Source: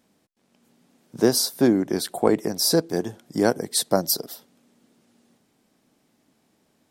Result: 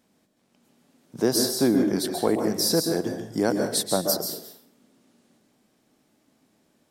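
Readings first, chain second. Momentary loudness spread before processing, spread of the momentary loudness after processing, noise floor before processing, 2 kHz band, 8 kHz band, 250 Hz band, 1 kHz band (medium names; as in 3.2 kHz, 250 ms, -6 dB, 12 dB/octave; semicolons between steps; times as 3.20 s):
9 LU, 6 LU, -68 dBFS, -2.0 dB, -1.5 dB, -1.0 dB, -2.5 dB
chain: in parallel at -1 dB: peak limiter -14 dBFS, peak gain reduction 10 dB; on the sum: plate-style reverb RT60 0.54 s, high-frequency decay 0.85×, pre-delay 120 ms, DRR 4.5 dB; trim -7 dB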